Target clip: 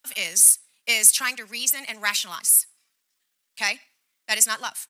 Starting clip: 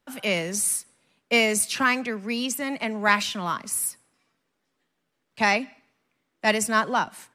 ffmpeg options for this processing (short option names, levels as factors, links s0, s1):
-af "atempo=1.5,crystalizer=i=3:c=0,tiltshelf=f=930:g=-9,volume=0.335"